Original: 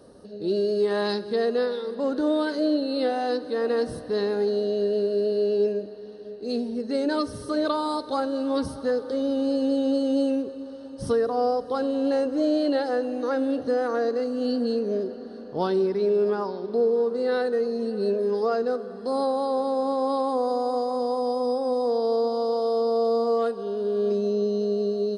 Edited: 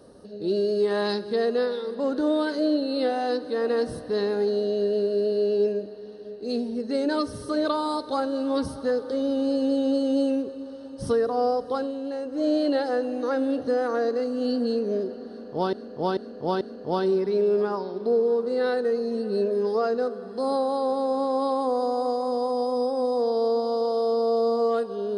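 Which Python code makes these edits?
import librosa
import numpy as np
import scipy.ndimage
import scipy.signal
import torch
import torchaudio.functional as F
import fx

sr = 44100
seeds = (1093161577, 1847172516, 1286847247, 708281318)

y = fx.edit(x, sr, fx.fade_down_up(start_s=11.75, length_s=0.73, db=-8.0, fade_s=0.31, curve='qua'),
    fx.repeat(start_s=15.29, length_s=0.44, count=4), tone=tone)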